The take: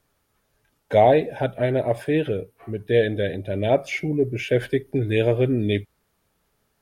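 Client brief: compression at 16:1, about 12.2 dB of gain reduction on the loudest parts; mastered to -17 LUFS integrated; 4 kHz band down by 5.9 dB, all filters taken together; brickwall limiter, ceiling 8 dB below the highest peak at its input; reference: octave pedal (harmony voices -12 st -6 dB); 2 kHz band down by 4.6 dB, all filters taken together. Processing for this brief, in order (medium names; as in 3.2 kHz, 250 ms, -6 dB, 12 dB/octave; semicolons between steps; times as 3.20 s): peaking EQ 2 kHz -4 dB; peaking EQ 4 kHz -6 dB; compression 16:1, threshold -23 dBFS; peak limiter -22 dBFS; harmony voices -12 st -6 dB; trim +14.5 dB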